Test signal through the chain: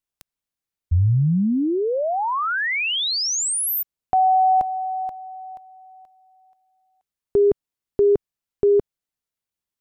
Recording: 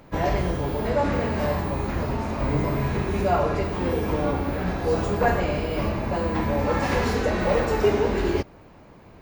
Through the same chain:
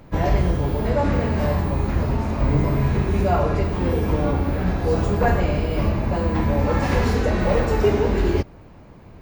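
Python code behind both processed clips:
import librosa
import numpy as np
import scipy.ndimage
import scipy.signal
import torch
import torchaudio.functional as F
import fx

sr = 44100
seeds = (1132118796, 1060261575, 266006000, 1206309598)

y = fx.low_shelf(x, sr, hz=190.0, db=8.5)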